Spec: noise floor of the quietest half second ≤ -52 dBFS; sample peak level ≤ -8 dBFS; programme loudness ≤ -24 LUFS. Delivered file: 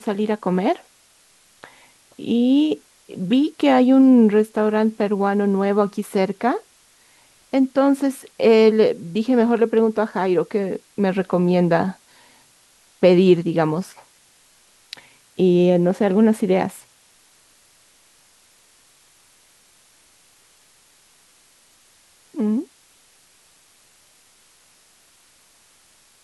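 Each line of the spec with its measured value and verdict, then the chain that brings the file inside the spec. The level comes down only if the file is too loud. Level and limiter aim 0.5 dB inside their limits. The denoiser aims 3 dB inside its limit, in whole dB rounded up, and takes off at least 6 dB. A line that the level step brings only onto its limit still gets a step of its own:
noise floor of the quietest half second -56 dBFS: pass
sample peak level -3.5 dBFS: fail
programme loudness -18.5 LUFS: fail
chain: trim -6 dB

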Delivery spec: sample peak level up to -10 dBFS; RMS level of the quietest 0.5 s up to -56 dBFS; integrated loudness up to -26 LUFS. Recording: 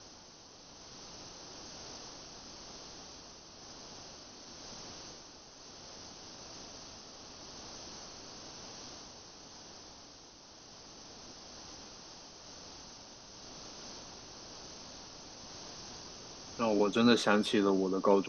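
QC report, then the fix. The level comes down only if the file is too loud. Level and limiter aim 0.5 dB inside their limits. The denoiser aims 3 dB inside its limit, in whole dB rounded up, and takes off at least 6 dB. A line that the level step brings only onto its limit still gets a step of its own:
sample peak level -12.5 dBFS: pass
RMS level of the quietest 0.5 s -55 dBFS: fail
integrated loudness -37.5 LUFS: pass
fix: noise reduction 6 dB, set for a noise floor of -55 dBFS

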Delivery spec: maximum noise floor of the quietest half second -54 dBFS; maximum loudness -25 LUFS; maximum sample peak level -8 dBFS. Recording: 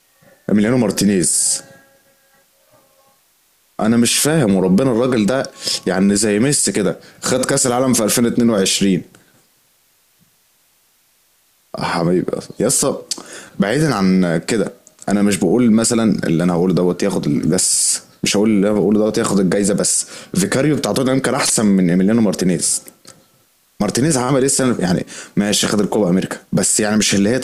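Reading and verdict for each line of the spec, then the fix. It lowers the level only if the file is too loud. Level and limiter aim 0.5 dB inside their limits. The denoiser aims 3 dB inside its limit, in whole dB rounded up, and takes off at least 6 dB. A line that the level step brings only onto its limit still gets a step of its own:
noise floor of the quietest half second -58 dBFS: pass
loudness -15.5 LUFS: fail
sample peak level -6.0 dBFS: fail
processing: trim -10 dB

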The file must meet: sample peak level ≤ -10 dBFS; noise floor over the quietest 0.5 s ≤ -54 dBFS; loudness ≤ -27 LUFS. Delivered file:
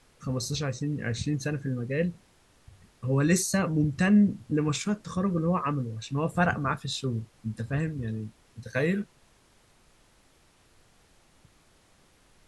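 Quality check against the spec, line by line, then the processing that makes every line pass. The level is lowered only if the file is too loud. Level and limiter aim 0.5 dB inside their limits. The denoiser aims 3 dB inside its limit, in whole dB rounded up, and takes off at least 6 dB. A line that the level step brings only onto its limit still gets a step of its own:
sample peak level -11.5 dBFS: pass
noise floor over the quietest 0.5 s -62 dBFS: pass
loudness -28.5 LUFS: pass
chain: none needed

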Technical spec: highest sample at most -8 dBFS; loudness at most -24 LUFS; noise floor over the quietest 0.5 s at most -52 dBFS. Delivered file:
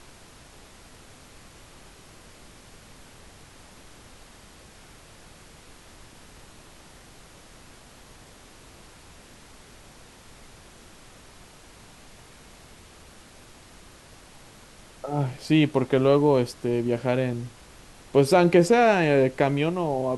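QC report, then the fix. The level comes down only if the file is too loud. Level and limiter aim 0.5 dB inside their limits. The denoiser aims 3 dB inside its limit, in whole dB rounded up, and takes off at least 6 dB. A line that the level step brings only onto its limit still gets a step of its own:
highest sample -6.5 dBFS: fail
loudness -22.0 LUFS: fail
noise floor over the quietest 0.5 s -49 dBFS: fail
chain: noise reduction 6 dB, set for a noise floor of -49 dBFS; trim -2.5 dB

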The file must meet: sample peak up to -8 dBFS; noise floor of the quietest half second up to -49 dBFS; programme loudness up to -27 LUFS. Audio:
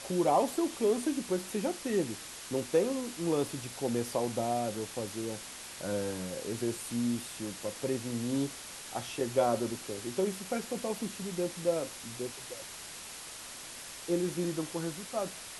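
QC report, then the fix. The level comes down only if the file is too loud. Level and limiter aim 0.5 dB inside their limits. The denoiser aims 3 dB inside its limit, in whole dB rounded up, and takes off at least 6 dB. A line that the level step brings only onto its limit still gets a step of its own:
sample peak -15.0 dBFS: pass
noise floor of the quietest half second -45 dBFS: fail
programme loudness -34.0 LUFS: pass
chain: noise reduction 7 dB, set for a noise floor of -45 dBFS

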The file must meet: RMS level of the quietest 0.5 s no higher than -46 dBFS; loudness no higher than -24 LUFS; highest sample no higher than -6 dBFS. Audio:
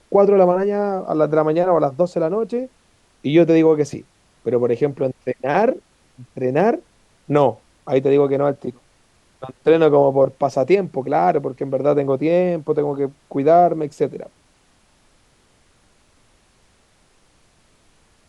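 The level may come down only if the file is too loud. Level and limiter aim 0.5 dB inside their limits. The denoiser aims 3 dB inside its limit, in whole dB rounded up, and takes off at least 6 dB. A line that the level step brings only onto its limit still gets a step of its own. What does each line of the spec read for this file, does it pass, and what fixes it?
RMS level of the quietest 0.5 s -58 dBFS: pass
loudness -18.0 LUFS: fail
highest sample -3.5 dBFS: fail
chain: trim -6.5 dB

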